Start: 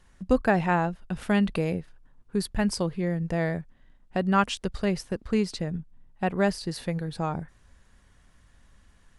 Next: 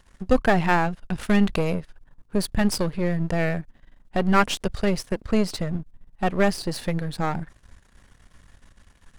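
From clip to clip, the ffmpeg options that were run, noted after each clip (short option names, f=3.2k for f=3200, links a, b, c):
-af "aeval=exprs='if(lt(val(0),0),0.251*val(0),val(0))':c=same,volume=8dB"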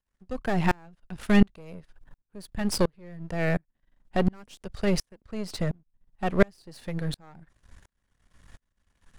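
-filter_complex "[0:a]acrossover=split=510|4300[a][b][c];[b]alimiter=limit=-15dB:level=0:latency=1:release=271[d];[a][d][c]amix=inputs=3:normalize=0,aeval=exprs='val(0)*pow(10,-35*if(lt(mod(-1.4*n/s,1),2*abs(-1.4)/1000),1-mod(-1.4*n/s,1)/(2*abs(-1.4)/1000),(mod(-1.4*n/s,1)-2*abs(-1.4)/1000)/(1-2*abs(-1.4)/1000))/20)':c=same,volume=3.5dB"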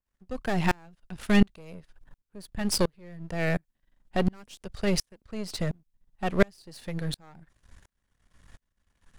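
-af "adynamicequalizer=threshold=0.00562:dfrequency=2300:dqfactor=0.7:tfrequency=2300:tqfactor=0.7:attack=5:release=100:ratio=0.375:range=2.5:mode=boostabove:tftype=highshelf,volume=-1.5dB"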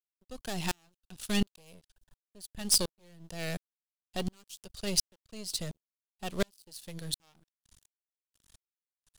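-af "aeval=exprs='sgn(val(0))*max(abs(val(0))-0.00237,0)':c=same,aexciter=amount=4.2:drive=6:freq=2.9k,aeval=exprs='1.88*(cos(1*acos(clip(val(0)/1.88,-1,1)))-cos(1*PI/2))+0.422*(cos(2*acos(clip(val(0)/1.88,-1,1)))-cos(2*PI/2))':c=same,volume=-9.5dB"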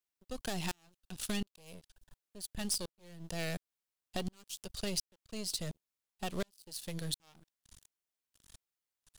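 -af "acompressor=threshold=-38dB:ratio=4,volume=3.5dB"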